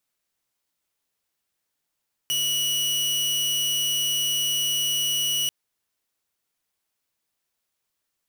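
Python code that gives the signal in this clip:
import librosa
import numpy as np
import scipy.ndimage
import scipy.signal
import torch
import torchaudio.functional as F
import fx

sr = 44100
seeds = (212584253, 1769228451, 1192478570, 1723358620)

y = 10.0 ** (-19.5 / 20.0) * (2.0 * np.mod(2930.0 * (np.arange(round(3.19 * sr)) / sr), 1.0) - 1.0)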